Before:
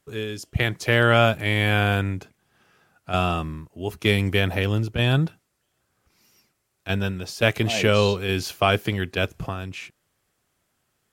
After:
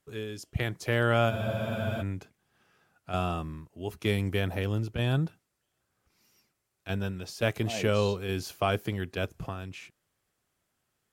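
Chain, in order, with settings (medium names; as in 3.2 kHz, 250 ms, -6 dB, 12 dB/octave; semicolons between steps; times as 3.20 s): dynamic bell 2.7 kHz, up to -5 dB, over -37 dBFS, Q 0.77; spectral freeze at 1.32 s, 0.69 s; trim -6.5 dB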